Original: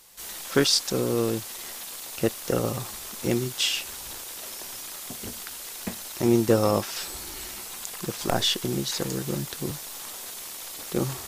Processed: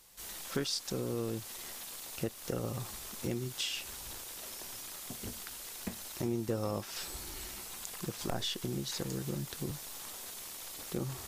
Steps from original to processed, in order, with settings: bass shelf 170 Hz +6.5 dB; compression 2.5:1, threshold -27 dBFS, peak gain reduction 9.5 dB; trim -7 dB

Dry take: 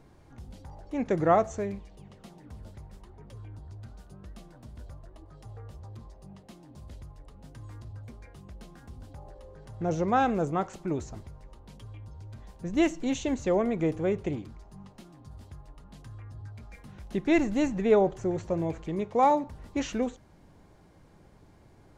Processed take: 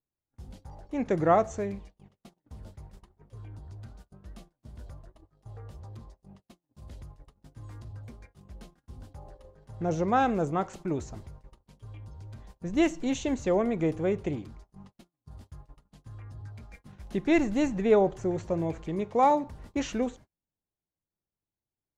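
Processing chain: gate -46 dBFS, range -39 dB

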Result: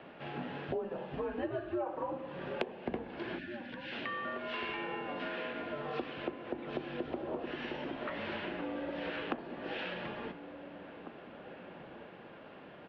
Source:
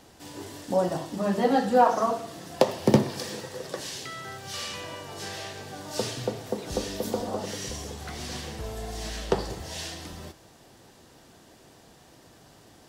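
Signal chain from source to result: mistuned SSB -150 Hz 360–3000 Hz; compression 6:1, threshold -41 dBFS, peak gain reduction 24 dB; time-frequency box 3.38–3.92 s, 320–1400 Hz -26 dB; echo from a far wall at 300 m, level -10 dB; trim +5.5 dB

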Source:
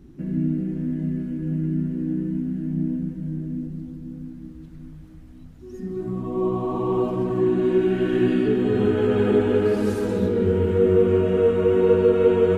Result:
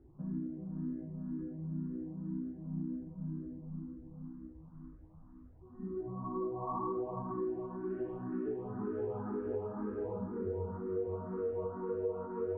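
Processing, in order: compression 4:1, threshold -25 dBFS, peak gain reduction 11.5 dB; four-pole ladder low-pass 1.2 kHz, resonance 60%; barber-pole phaser +2 Hz; trim +1.5 dB

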